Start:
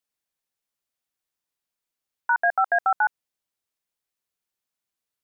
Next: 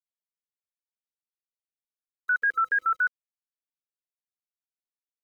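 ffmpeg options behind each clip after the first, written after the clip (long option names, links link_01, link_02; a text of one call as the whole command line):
ffmpeg -i in.wav -af "bandreject=frequency=50:width_type=h:width=6,bandreject=frequency=100:width_type=h:width=6,bandreject=frequency=150:width_type=h:width=6,bandreject=frequency=200:width_type=h:width=6,bandreject=frequency=250:width_type=h:width=6,bandreject=frequency=300:width_type=h:width=6,bandreject=frequency=350:width_type=h:width=6,afftfilt=real='re*(1-between(b*sr/4096,510,1300))':imag='im*(1-between(b*sr/4096,510,1300))':win_size=4096:overlap=0.75,aeval=exprs='val(0)*gte(abs(val(0)),0.00133)':channel_layout=same" out.wav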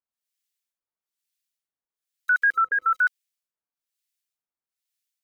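ffmpeg -i in.wav -filter_complex "[0:a]tiltshelf=frequency=1200:gain=-6,acrossover=split=1400[link_01][link_02];[link_01]aeval=exprs='val(0)*(1-1/2+1/2*cos(2*PI*1.1*n/s))':channel_layout=same[link_03];[link_02]aeval=exprs='val(0)*(1-1/2-1/2*cos(2*PI*1.1*n/s))':channel_layout=same[link_04];[link_03][link_04]amix=inputs=2:normalize=0,volume=8dB" out.wav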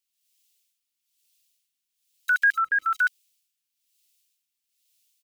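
ffmpeg -i in.wav -af "firequalizer=gain_entry='entry(300,0);entry(450,-14);entry(2700,14)':delay=0.05:min_phase=1" out.wav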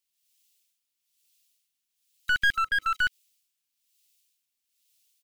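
ffmpeg -i in.wav -filter_complex "[0:a]acrossover=split=3200[link_01][link_02];[link_02]acompressor=threshold=-52dB:ratio=4:attack=1:release=60[link_03];[link_01][link_03]amix=inputs=2:normalize=0,aeval=exprs='clip(val(0),-1,0.0473)':channel_layout=same" out.wav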